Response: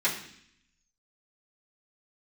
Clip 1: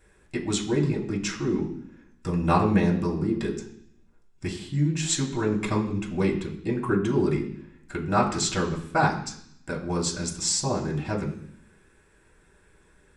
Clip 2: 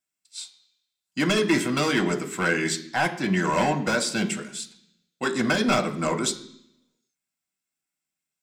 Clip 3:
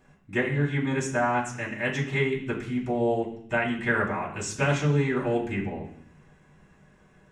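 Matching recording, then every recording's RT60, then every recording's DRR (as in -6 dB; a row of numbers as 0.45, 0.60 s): 3; 0.65, 0.65, 0.65 s; -4.0, 4.0, -10.5 dB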